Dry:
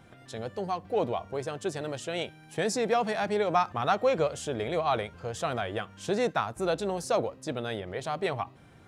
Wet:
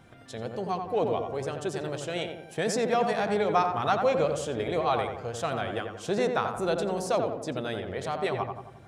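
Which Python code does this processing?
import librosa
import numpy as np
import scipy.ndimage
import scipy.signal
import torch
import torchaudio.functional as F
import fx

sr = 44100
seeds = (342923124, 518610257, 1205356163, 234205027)

y = fx.echo_filtered(x, sr, ms=88, feedback_pct=54, hz=1600.0, wet_db=-4.5)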